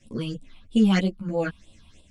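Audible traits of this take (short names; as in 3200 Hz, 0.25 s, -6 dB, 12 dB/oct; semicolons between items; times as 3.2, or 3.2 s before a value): phasing stages 6, 3.1 Hz, lowest notch 450–1800 Hz; tremolo saw up 1 Hz, depth 45%; a shimmering, thickened sound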